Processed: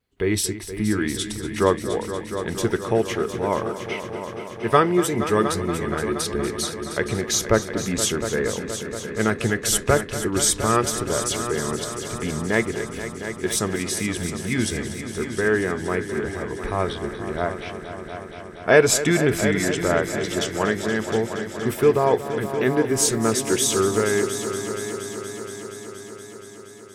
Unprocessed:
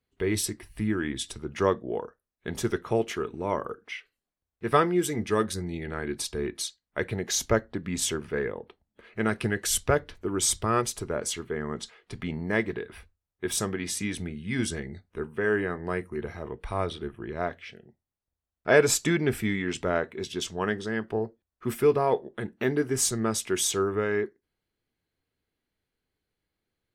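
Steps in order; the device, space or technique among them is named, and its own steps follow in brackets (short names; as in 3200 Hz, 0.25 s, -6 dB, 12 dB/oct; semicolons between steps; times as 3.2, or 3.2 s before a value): multi-head tape echo (multi-head echo 0.236 s, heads all three, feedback 67%, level -14 dB; wow and flutter 23 cents); gain +5 dB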